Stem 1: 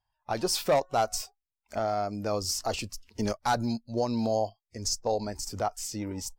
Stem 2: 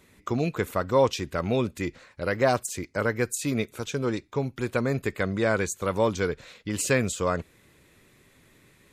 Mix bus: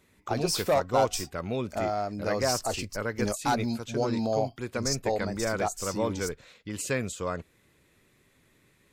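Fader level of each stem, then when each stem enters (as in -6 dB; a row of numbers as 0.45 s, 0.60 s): -0.5 dB, -6.0 dB; 0.00 s, 0.00 s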